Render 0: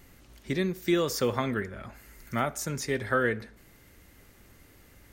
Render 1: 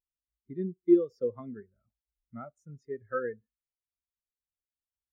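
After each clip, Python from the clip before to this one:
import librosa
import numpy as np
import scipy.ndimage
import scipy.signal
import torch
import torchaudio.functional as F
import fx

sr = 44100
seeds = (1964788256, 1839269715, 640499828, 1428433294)

y = fx.spectral_expand(x, sr, expansion=2.5)
y = F.gain(torch.from_numpy(y), 1.5).numpy()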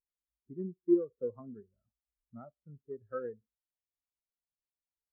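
y = fx.wiener(x, sr, points=15)
y = scipy.signal.sosfilt(scipy.signal.butter(4, 1300.0, 'lowpass', fs=sr, output='sos'), y)
y = F.gain(torch.from_numpy(y), -5.0).numpy()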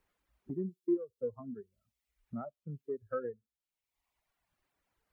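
y = fx.dereverb_blind(x, sr, rt60_s=1.0)
y = fx.band_squash(y, sr, depth_pct=70)
y = F.gain(torch.from_numpy(y), 2.5).numpy()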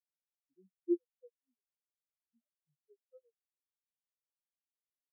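y = fx.spectral_expand(x, sr, expansion=4.0)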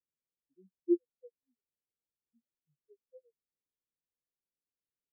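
y = scipy.signal.sosfilt(scipy.signal.ellip(4, 1.0, 40, 520.0, 'lowpass', fs=sr, output='sos'), x)
y = F.gain(torch.from_numpy(y), 4.5).numpy()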